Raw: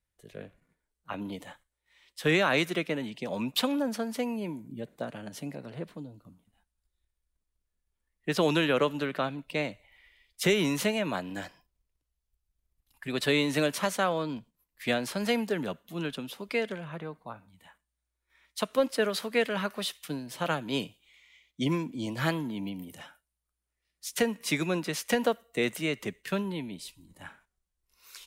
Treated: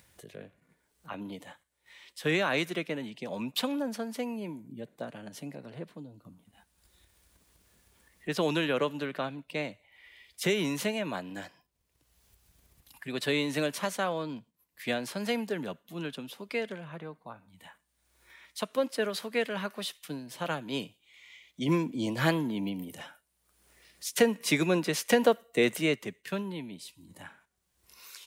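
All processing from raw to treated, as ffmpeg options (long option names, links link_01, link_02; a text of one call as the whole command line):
ffmpeg -i in.wav -filter_complex "[0:a]asettb=1/sr,asplit=3[link_01][link_02][link_03];[link_01]atrim=end=21.684[link_04];[link_02]atrim=start=21.68:end=25.96,asetpts=PTS-STARTPTS,afade=type=in:duration=0.004:curve=qsin,afade=type=out:start_time=4.276:duration=0.004:curve=qsin,equalizer=frequency=440:width=1.5:gain=2.5,acontrast=27[link_05];[link_03]atrim=start=25.956[link_06];[link_04][link_05]acrossfade=duration=0.004:curve1=hsin:curve2=qsin[link_07];[link_07][link_06]acrossfade=duration=0.004:curve1=qsin:curve2=hsin,highpass=94,bandreject=frequency=1300:width=23,acompressor=mode=upward:threshold=-39dB:ratio=2.5,volume=-3dB" out.wav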